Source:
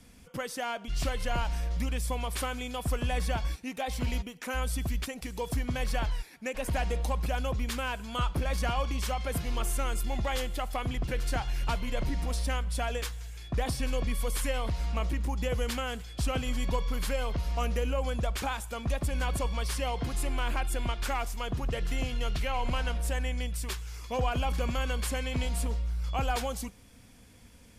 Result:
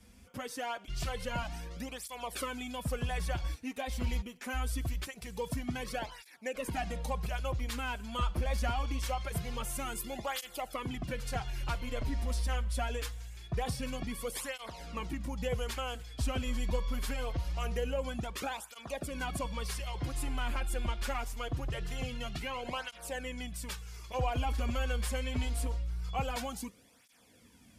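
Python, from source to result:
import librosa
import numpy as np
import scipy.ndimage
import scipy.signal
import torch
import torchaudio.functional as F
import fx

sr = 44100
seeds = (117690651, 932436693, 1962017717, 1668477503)

y = fx.high_shelf(x, sr, hz=10000.0, db=9.0, at=(9.75, 10.61))
y = fx.flanger_cancel(y, sr, hz=0.24, depth_ms=7.3)
y = y * 10.0 ** (-1.0 / 20.0)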